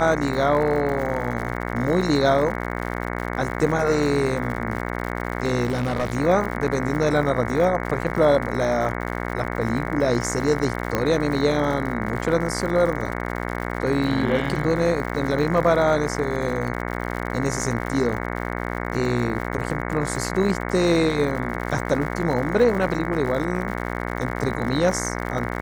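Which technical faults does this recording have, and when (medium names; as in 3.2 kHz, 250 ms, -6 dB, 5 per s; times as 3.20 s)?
buzz 60 Hz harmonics 37 -28 dBFS
crackle 110 per s -30 dBFS
5.65–6.17 s: clipped -18.5 dBFS
10.95 s: pop -8 dBFS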